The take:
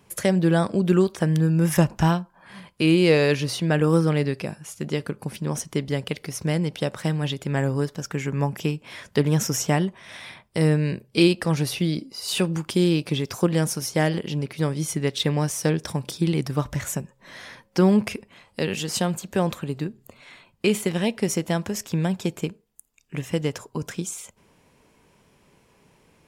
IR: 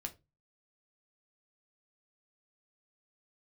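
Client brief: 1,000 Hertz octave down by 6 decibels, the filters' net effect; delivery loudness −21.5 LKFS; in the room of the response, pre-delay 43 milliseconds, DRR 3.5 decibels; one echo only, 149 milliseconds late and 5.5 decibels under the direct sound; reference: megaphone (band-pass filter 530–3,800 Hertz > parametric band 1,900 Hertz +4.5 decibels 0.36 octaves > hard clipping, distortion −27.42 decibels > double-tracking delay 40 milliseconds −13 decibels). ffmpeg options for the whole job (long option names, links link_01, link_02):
-filter_complex "[0:a]equalizer=frequency=1000:width_type=o:gain=-7.5,aecho=1:1:149:0.531,asplit=2[link_01][link_02];[1:a]atrim=start_sample=2205,adelay=43[link_03];[link_02][link_03]afir=irnorm=-1:irlink=0,volume=-1.5dB[link_04];[link_01][link_04]amix=inputs=2:normalize=0,highpass=530,lowpass=3800,equalizer=frequency=1900:width_type=o:width=0.36:gain=4.5,asoftclip=type=hard:threshold=-14.5dB,asplit=2[link_05][link_06];[link_06]adelay=40,volume=-13dB[link_07];[link_05][link_07]amix=inputs=2:normalize=0,volume=8dB"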